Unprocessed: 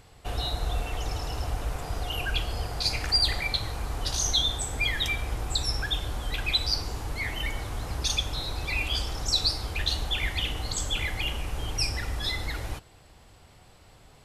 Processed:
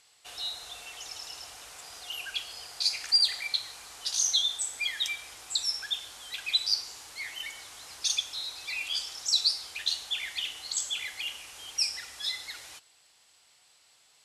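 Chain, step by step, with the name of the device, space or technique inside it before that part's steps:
piezo pickup straight into a mixer (low-pass filter 7,400 Hz 12 dB per octave; first difference)
level +5 dB

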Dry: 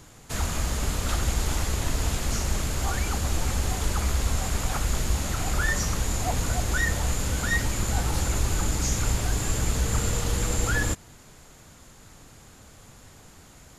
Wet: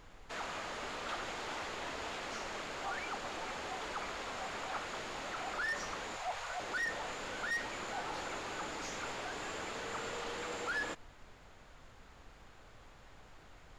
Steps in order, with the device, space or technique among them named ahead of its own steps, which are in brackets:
0:06.16–0:06.60: high-pass filter 580 Hz 24 dB per octave
aircraft cabin announcement (band-pass filter 460–3,200 Hz; soft clipping −27.5 dBFS, distortion −14 dB; brown noise bed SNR 15 dB)
level −4 dB

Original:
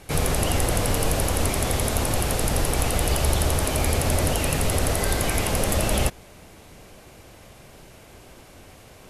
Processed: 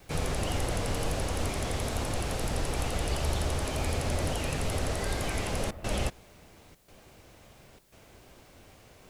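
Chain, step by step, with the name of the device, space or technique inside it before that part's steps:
worn cassette (low-pass filter 8,300 Hz 12 dB per octave; tape wow and flutter; tape dropouts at 0:05.71/0:06.75/0:07.79, 130 ms −14 dB; white noise bed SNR 35 dB)
level −7.5 dB

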